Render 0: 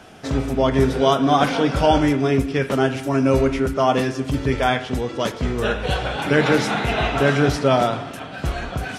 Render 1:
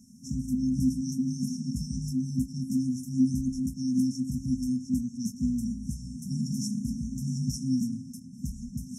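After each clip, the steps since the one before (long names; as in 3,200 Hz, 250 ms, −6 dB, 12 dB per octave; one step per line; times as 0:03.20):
brick-wall band-stop 260–5,300 Hz
three-way crossover with the lows and the highs turned down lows −21 dB, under 270 Hz, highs −12 dB, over 3,100 Hz
level +8 dB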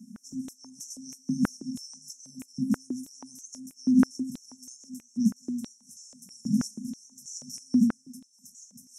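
high-pass on a step sequencer 6.2 Hz 210–6,400 Hz
level −2 dB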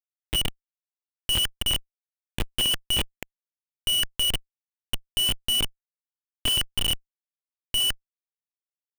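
voice inversion scrambler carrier 3,200 Hz
comparator with hysteresis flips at −34.5 dBFS
level +8.5 dB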